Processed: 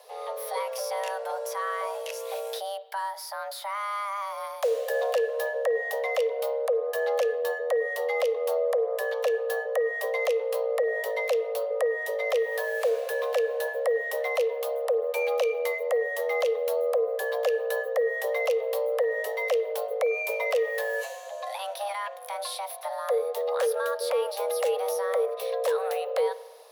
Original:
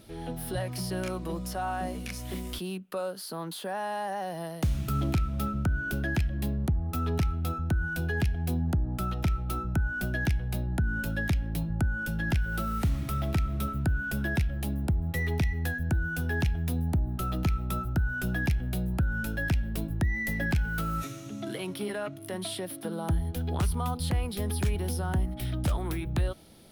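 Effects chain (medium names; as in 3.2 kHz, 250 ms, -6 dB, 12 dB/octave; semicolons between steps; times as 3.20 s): spring tank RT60 1.3 s, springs 49 ms, chirp 45 ms, DRR 17 dB; frequency shift +400 Hz; trim +1 dB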